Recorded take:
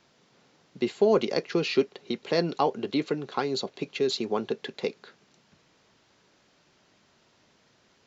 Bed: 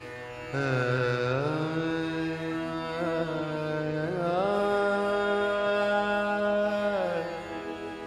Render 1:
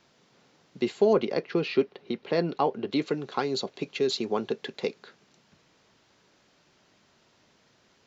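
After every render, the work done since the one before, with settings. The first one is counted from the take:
0:01.13–0:02.92: high-frequency loss of the air 190 metres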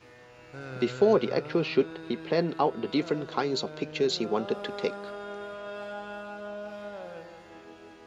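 mix in bed −12.5 dB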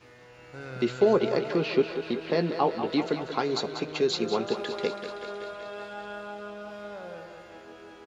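double-tracking delay 17 ms −12.5 dB
feedback echo with a high-pass in the loop 190 ms, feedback 72%, high-pass 270 Hz, level −9 dB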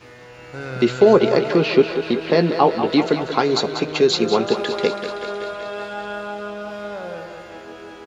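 level +9.5 dB
brickwall limiter −2 dBFS, peak gain reduction 1.5 dB

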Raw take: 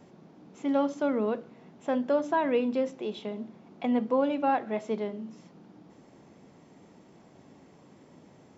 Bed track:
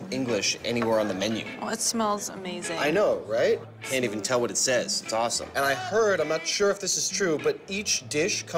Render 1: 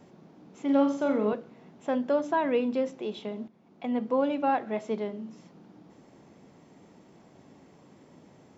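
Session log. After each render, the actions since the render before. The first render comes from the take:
0:00.65–0:01.33: flutter between parallel walls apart 7.4 metres, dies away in 0.44 s
0:03.48–0:04.21: fade in, from −12.5 dB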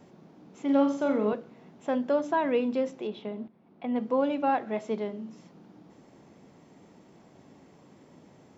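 0:03.07–0:03.96: high-frequency loss of the air 190 metres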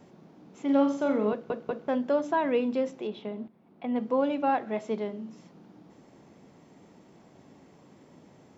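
0:01.31: stutter in place 0.19 s, 3 plays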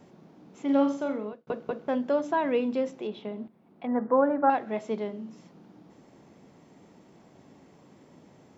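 0:00.87–0:01.47: fade out
0:03.87–0:04.50: drawn EQ curve 190 Hz 0 dB, 1,800 Hz +8 dB, 2,600 Hz −23 dB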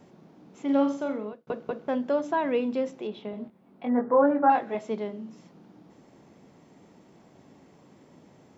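0:03.31–0:04.75: double-tracking delay 21 ms −3 dB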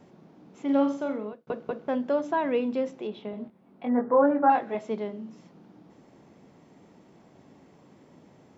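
high-shelf EQ 6,200 Hz −5 dB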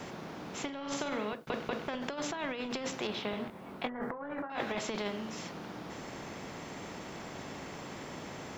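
compressor whose output falls as the input rises −32 dBFS, ratio −1
every bin compressed towards the loudest bin 2 to 1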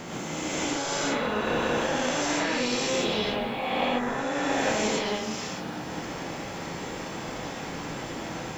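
peak hold with a rise ahead of every peak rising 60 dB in 2.50 s
reverb whose tail is shaped and stops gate 150 ms rising, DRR −3.5 dB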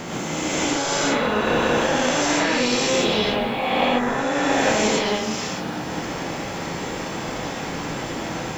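level +6.5 dB

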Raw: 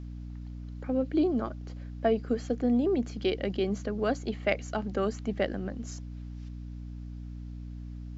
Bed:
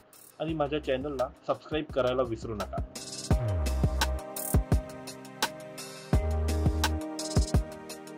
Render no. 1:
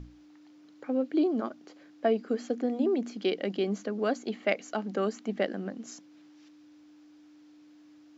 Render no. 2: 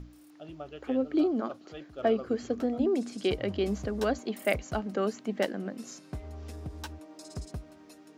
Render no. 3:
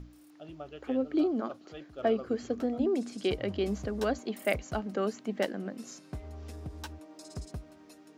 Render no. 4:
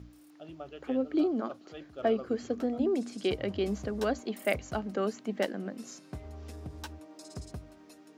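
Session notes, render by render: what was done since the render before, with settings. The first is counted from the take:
mains-hum notches 60/120/180/240 Hz
mix in bed −13.5 dB
level −1.5 dB
high-pass filter 53 Hz; mains-hum notches 50/100/150 Hz

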